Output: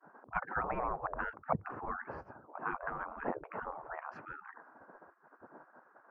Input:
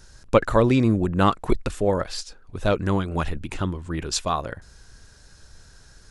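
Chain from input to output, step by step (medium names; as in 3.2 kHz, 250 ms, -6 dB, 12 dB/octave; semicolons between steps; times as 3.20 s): inverse Chebyshev low-pass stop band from 3.4 kHz, stop band 60 dB; expander -45 dBFS; spectral gate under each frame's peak -30 dB weak; trim +14.5 dB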